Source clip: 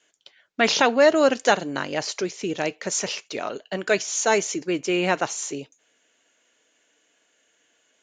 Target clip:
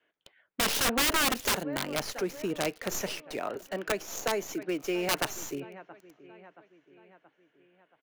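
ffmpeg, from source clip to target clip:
-filter_complex "[0:a]aecho=1:1:676|1352|2028|2704:0.0944|0.0491|0.0255|0.0133,acrossover=split=240|800|2800[a][b][c][d];[d]acrusher=bits=4:dc=4:mix=0:aa=0.000001[e];[a][b][c][e]amix=inputs=4:normalize=0,asettb=1/sr,asplit=3[f][g][h];[f]atrim=end=0.744[i];[g]atrim=start=0.74:end=1.73,asetpts=PTS-STARTPTS,afade=t=in:d=0.004:c=qsin,afade=t=out:st=0.986:d=0.004:c=qsin,highshelf=f=5.7k:g=7[j];[h]atrim=start=1.726[k];[i][j]acrossfade=d=0.004:c1=hsin:c2=qsin[l];[l][k]acrossfade=d=0.004:c1=qsin:c2=hsin,asettb=1/sr,asplit=3[m][n][o];[m]atrim=end=3.554[p];[n]atrim=start=3.55:end=5.09,asetpts=PTS-STARTPTS,afade=t=in:d=0.004:c=qsin,afade=t=out:st=1.536:d=0.004:c=qsin,acrossover=split=230|970[q][r][s];[q]acompressor=threshold=-43dB:ratio=4[t];[r]acompressor=threshold=-23dB:ratio=4[u];[s]acompressor=threshold=-32dB:ratio=4[v];[t][u][v]amix=inputs=3:normalize=0[w];[o]atrim=start=5.086[x];[p][w]acrossfade=d=0.004:c1=hsin:c2=qsin[y];[y][x]acrossfade=d=0.004:c1=qsin:c2=hsin,aeval=exprs='(mod(5.96*val(0)+1,2)-1)/5.96':c=same,volume=-4.5dB"

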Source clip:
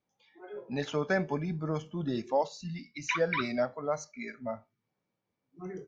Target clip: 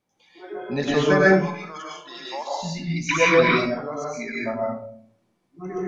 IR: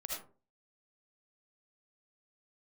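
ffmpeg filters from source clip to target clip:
-filter_complex "[0:a]asettb=1/sr,asplit=3[a][b][c];[a]atrim=end=1.284[d];[b]atrim=start=1.28:end=2.61,asetpts=PTS-STARTPTS,afade=t=in:d=0.004:c=qsin,afade=t=out:st=1.326:d=0.004:c=qsin,highpass=1.3k[e];[c]atrim=start=2.606[f];[d][e]acrossfade=d=0.004:c1=hsin:c2=qsin[g];[g][f]acrossfade=d=0.004:c1=qsin:c2=hsin,asettb=1/sr,asplit=3[h][i][j];[h]atrim=end=3.474[k];[i]atrim=start=3.47:end=4.08,asetpts=PTS-STARTPTS,afade=t=in:d=0.004:c=qsin,afade=t=out:st=0.606:d=0.004:c=qsin,acompressor=threshold=-41dB:ratio=2.5[l];[j]atrim=start=4.076[m];[k][l]acrossfade=d=0.004:c1=hsin:c2=qsin[n];[n][m]acrossfade=d=0.004:c1=qsin:c2=hsin[o];[1:a]atrim=start_sample=2205,asetrate=23814,aresample=44100[p];[o][p]afir=irnorm=-1:irlink=0,volume=8.5dB"

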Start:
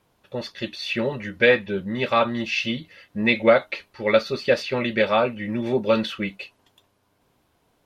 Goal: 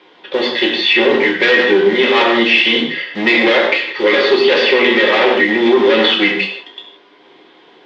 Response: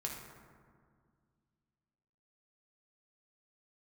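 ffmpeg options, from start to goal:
-filter_complex "[0:a]acrossover=split=2700[a][b];[b]acompressor=threshold=-34dB:ratio=4:attack=1:release=60[c];[a][c]amix=inputs=2:normalize=0,aeval=exprs='(tanh(15.8*val(0)+0.35)-tanh(0.35))/15.8':c=same,asplit=2[d][e];[e]aeval=exprs='(mod(84.1*val(0)+1,2)-1)/84.1':c=same,volume=-6dB[f];[d][f]amix=inputs=2:normalize=0,highpass=f=250:w=0.5412,highpass=f=250:w=1.3066,equalizer=f=250:t=q:w=4:g=-4,equalizer=f=390:t=q:w=4:g=8,equalizer=f=610:t=q:w=4:g=-6,equalizer=f=1.3k:t=q:w=4:g=-3,equalizer=f=2k:t=q:w=4:g=8,equalizer=f=3.3k:t=q:w=4:g=9,lowpass=f=4.4k:w=0.5412,lowpass=f=4.4k:w=1.3066[g];[1:a]atrim=start_sample=2205,atrim=end_sample=6174,asetrate=33516,aresample=44100[h];[g][h]afir=irnorm=-1:irlink=0,alimiter=level_in=18dB:limit=-1dB:release=50:level=0:latency=1,volume=-1dB"

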